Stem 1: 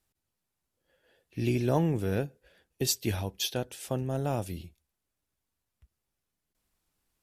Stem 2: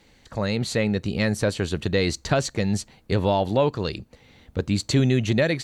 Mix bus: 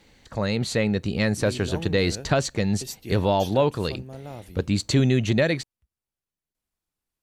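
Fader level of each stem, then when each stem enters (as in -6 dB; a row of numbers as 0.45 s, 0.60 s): -8.0 dB, 0.0 dB; 0.00 s, 0.00 s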